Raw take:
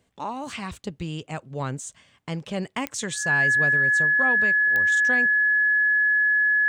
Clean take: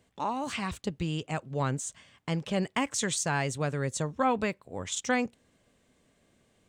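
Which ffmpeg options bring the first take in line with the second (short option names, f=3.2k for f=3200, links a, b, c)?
-af "adeclick=t=4,bandreject=f=1.7k:w=30,asetnsamples=n=441:p=0,asendcmd='3.77 volume volume 3dB',volume=0dB"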